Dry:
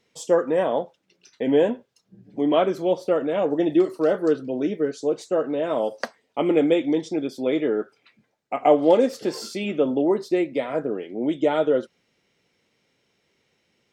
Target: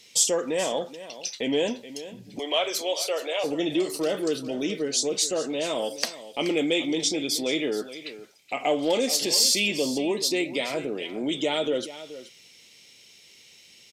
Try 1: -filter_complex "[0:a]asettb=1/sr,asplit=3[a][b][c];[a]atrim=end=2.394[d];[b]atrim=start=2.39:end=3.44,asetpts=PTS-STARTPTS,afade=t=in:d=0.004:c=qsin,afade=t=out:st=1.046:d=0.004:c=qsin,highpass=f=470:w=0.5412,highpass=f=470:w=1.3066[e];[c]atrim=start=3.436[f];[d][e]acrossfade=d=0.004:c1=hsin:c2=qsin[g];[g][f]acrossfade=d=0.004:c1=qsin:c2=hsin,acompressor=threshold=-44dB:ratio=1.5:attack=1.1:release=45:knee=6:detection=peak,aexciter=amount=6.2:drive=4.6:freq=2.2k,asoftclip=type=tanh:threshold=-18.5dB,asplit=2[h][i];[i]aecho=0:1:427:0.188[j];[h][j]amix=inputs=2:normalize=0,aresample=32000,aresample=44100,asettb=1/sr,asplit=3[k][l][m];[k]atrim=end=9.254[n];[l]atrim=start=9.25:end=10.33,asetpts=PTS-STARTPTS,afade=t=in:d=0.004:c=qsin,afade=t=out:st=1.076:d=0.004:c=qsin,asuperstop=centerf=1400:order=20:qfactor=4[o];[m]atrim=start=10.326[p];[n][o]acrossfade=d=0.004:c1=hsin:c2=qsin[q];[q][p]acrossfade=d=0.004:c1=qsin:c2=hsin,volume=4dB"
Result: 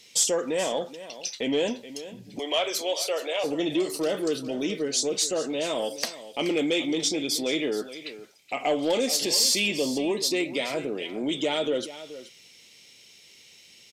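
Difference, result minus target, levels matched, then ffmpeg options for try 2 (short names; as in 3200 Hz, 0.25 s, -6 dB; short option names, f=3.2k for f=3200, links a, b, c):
soft clip: distortion +10 dB
-filter_complex "[0:a]asettb=1/sr,asplit=3[a][b][c];[a]atrim=end=2.394[d];[b]atrim=start=2.39:end=3.44,asetpts=PTS-STARTPTS,afade=t=in:d=0.004:c=qsin,afade=t=out:st=1.046:d=0.004:c=qsin,highpass=f=470:w=0.5412,highpass=f=470:w=1.3066[e];[c]atrim=start=3.436[f];[d][e]acrossfade=d=0.004:c1=hsin:c2=qsin[g];[g][f]acrossfade=d=0.004:c1=qsin:c2=hsin,acompressor=threshold=-44dB:ratio=1.5:attack=1.1:release=45:knee=6:detection=peak,aexciter=amount=6.2:drive=4.6:freq=2.2k,asoftclip=type=tanh:threshold=-12dB,asplit=2[h][i];[i]aecho=0:1:427:0.188[j];[h][j]amix=inputs=2:normalize=0,aresample=32000,aresample=44100,asettb=1/sr,asplit=3[k][l][m];[k]atrim=end=9.254[n];[l]atrim=start=9.25:end=10.33,asetpts=PTS-STARTPTS,afade=t=in:d=0.004:c=qsin,afade=t=out:st=1.076:d=0.004:c=qsin,asuperstop=centerf=1400:order=20:qfactor=4[o];[m]atrim=start=10.326[p];[n][o]acrossfade=d=0.004:c1=hsin:c2=qsin[q];[q][p]acrossfade=d=0.004:c1=qsin:c2=hsin,volume=4dB"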